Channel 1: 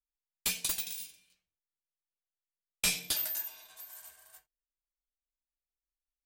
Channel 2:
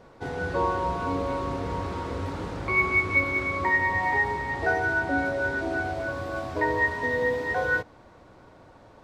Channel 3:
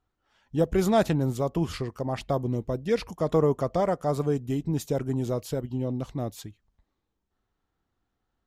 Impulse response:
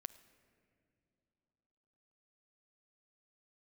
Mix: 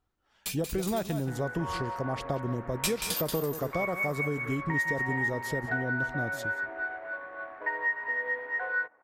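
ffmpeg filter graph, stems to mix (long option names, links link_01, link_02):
-filter_complex "[0:a]dynaudnorm=framelen=220:gausssize=5:maxgain=11dB,aeval=exprs='0.501*(cos(1*acos(clip(val(0)/0.501,-1,1)))-cos(1*PI/2))+0.0178*(cos(7*acos(clip(val(0)/0.501,-1,1)))-cos(7*PI/2))':channel_layout=same,volume=-8dB,asplit=2[link_01][link_02];[link_02]volume=-9dB[link_03];[1:a]highpass=560,adynamicsmooth=sensitivity=5.5:basefreq=1300,lowpass=frequency=1800:width_type=q:width=3,adelay=1050,volume=-10.5dB,asplit=2[link_04][link_05];[link_05]volume=-11.5dB[link_06];[2:a]volume=-1dB,asplit=3[link_07][link_08][link_09];[link_08]volume=-18.5dB[link_10];[link_09]apad=whole_len=275863[link_11];[link_01][link_11]sidechaincompress=threshold=-39dB:ratio=5:attack=8.2:release=120[link_12];[link_04][link_07]amix=inputs=2:normalize=0,acompressor=threshold=-27dB:ratio=6,volume=0dB[link_13];[3:a]atrim=start_sample=2205[link_14];[link_06][link_14]afir=irnorm=-1:irlink=0[link_15];[link_03][link_10]amix=inputs=2:normalize=0,aecho=0:1:182:1[link_16];[link_12][link_13][link_15][link_16]amix=inputs=4:normalize=0"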